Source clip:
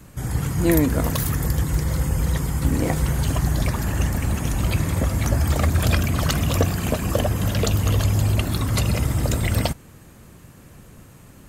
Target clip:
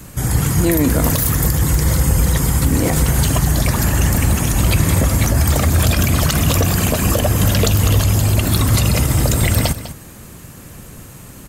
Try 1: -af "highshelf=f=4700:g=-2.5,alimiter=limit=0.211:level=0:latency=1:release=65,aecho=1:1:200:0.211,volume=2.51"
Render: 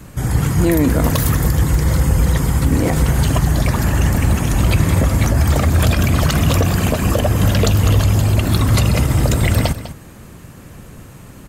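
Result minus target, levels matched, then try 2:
8 kHz band -6.0 dB
-af "highshelf=f=4700:g=7,alimiter=limit=0.211:level=0:latency=1:release=65,aecho=1:1:200:0.211,volume=2.51"

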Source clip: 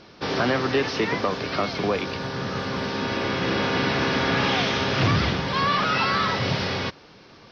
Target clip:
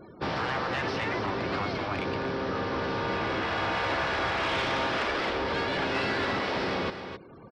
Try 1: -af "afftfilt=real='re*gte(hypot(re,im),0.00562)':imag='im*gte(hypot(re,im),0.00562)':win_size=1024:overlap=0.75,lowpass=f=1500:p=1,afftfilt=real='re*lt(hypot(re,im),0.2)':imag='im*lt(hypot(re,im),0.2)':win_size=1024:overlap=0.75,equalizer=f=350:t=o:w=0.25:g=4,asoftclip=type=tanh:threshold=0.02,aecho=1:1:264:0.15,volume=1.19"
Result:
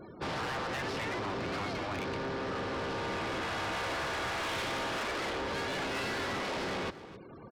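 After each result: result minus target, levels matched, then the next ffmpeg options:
saturation: distortion +11 dB; echo-to-direct -7.5 dB
-af "afftfilt=real='re*gte(hypot(re,im),0.00562)':imag='im*gte(hypot(re,im),0.00562)':win_size=1024:overlap=0.75,lowpass=f=1500:p=1,afftfilt=real='re*lt(hypot(re,im),0.2)':imag='im*lt(hypot(re,im),0.2)':win_size=1024:overlap=0.75,equalizer=f=350:t=o:w=0.25:g=4,asoftclip=type=tanh:threshold=0.0708,aecho=1:1:264:0.15,volume=1.19"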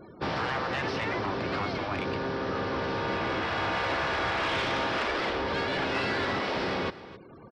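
echo-to-direct -7.5 dB
-af "afftfilt=real='re*gte(hypot(re,im),0.00562)':imag='im*gte(hypot(re,im),0.00562)':win_size=1024:overlap=0.75,lowpass=f=1500:p=1,afftfilt=real='re*lt(hypot(re,im),0.2)':imag='im*lt(hypot(re,im),0.2)':win_size=1024:overlap=0.75,equalizer=f=350:t=o:w=0.25:g=4,asoftclip=type=tanh:threshold=0.0708,aecho=1:1:264:0.355,volume=1.19"

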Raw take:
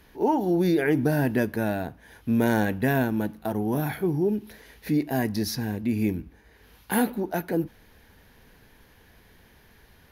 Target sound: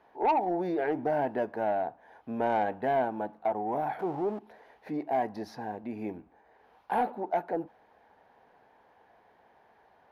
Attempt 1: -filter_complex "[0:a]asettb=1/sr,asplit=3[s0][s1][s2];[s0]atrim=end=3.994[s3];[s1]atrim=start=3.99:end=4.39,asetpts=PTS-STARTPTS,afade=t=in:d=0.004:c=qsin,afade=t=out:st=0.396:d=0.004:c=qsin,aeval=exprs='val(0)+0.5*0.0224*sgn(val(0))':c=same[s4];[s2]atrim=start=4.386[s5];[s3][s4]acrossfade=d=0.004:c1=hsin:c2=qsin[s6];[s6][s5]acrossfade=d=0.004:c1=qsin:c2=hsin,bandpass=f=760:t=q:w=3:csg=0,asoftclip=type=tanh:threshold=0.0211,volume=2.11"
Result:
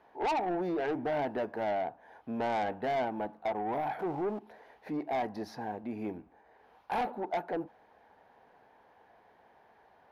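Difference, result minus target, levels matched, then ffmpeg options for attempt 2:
saturation: distortion +9 dB
-filter_complex "[0:a]asettb=1/sr,asplit=3[s0][s1][s2];[s0]atrim=end=3.994[s3];[s1]atrim=start=3.99:end=4.39,asetpts=PTS-STARTPTS,afade=t=in:d=0.004:c=qsin,afade=t=out:st=0.396:d=0.004:c=qsin,aeval=exprs='val(0)+0.5*0.0224*sgn(val(0))':c=same[s4];[s2]atrim=start=4.386[s5];[s3][s4]acrossfade=d=0.004:c1=hsin:c2=qsin[s6];[s6][s5]acrossfade=d=0.004:c1=qsin:c2=hsin,bandpass=f=760:t=q:w=3:csg=0,asoftclip=type=tanh:threshold=0.0562,volume=2.11"

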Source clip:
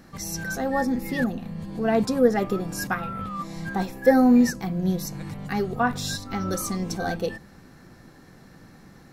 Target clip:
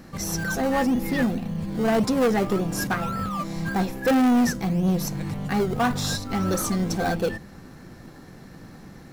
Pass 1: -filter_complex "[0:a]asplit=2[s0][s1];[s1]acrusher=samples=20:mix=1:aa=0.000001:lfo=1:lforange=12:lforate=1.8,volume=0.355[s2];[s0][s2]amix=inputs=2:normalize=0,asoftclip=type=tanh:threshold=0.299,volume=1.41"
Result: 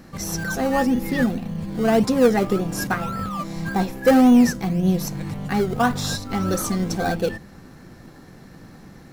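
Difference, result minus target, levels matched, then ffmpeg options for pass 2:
saturation: distortion -9 dB
-filter_complex "[0:a]asplit=2[s0][s1];[s1]acrusher=samples=20:mix=1:aa=0.000001:lfo=1:lforange=12:lforate=1.8,volume=0.355[s2];[s0][s2]amix=inputs=2:normalize=0,asoftclip=type=tanh:threshold=0.106,volume=1.41"

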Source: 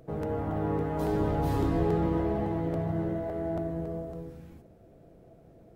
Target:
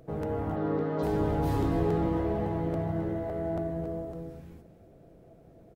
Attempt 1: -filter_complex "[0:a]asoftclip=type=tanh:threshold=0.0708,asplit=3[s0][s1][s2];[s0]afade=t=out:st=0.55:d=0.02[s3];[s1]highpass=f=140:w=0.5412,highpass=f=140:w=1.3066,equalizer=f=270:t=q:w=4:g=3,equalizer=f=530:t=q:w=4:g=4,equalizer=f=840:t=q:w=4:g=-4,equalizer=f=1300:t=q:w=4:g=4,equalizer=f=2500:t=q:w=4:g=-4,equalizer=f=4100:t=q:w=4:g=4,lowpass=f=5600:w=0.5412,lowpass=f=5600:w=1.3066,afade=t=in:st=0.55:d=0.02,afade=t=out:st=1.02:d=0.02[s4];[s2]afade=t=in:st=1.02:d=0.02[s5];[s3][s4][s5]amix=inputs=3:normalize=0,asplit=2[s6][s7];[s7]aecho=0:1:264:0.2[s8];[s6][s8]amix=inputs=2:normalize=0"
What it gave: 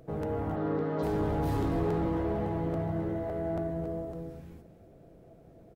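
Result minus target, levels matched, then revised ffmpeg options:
saturation: distortion +14 dB
-filter_complex "[0:a]asoftclip=type=tanh:threshold=0.2,asplit=3[s0][s1][s2];[s0]afade=t=out:st=0.55:d=0.02[s3];[s1]highpass=f=140:w=0.5412,highpass=f=140:w=1.3066,equalizer=f=270:t=q:w=4:g=3,equalizer=f=530:t=q:w=4:g=4,equalizer=f=840:t=q:w=4:g=-4,equalizer=f=1300:t=q:w=4:g=4,equalizer=f=2500:t=q:w=4:g=-4,equalizer=f=4100:t=q:w=4:g=4,lowpass=f=5600:w=0.5412,lowpass=f=5600:w=1.3066,afade=t=in:st=0.55:d=0.02,afade=t=out:st=1.02:d=0.02[s4];[s2]afade=t=in:st=1.02:d=0.02[s5];[s3][s4][s5]amix=inputs=3:normalize=0,asplit=2[s6][s7];[s7]aecho=0:1:264:0.2[s8];[s6][s8]amix=inputs=2:normalize=0"

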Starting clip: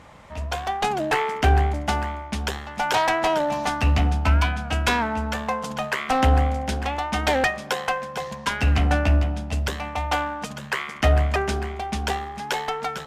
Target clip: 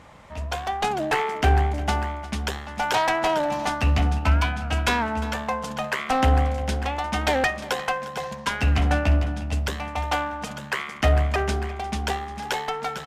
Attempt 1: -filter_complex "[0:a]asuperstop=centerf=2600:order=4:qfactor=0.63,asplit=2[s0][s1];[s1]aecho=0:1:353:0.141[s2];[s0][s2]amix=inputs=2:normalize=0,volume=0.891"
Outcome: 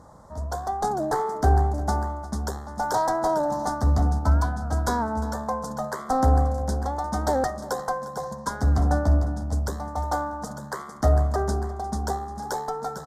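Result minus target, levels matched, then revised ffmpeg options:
2 kHz band -9.5 dB
-filter_complex "[0:a]asplit=2[s0][s1];[s1]aecho=0:1:353:0.141[s2];[s0][s2]amix=inputs=2:normalize=0,volume=0.891"

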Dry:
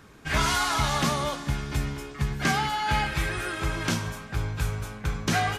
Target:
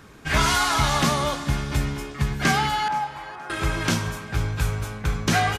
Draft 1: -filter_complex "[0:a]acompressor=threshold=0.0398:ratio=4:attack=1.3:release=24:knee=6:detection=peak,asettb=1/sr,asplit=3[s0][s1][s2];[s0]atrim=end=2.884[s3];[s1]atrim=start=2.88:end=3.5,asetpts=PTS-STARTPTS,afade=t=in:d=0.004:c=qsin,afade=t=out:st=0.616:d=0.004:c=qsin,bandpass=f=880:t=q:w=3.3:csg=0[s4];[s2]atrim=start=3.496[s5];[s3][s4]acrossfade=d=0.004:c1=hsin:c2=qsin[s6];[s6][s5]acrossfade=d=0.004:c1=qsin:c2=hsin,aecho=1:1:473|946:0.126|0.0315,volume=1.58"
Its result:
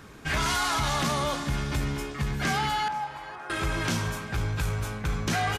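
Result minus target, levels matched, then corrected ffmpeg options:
compression: peak gain reduction +9 dB
-filter_complex "[0:a]asettb=1/sr,asplit=3[s0][s1][s2];[s0]atrim=end=2.884[s3];[s1]atrim=start=2.88:end=3.5,asetpts=PTS-STARTPTS,afade=t=in:d=0.004:c=qsin,afade=t=out:st=0.616:d=0.004:c=qsin,bandpass=f=880:t=q:w=3.3:csg=0[s4];[s2]atrim=start=3.496[s5];[s3][s4]acrossfade=d=0.004:c1=hsin:c2=qsin[s6];[s6][s5]acrossfade=d=0.004:c1=qsin:c2=hsin,aecho=1:1:473|946:0.126|0.0315,volume=1.58"

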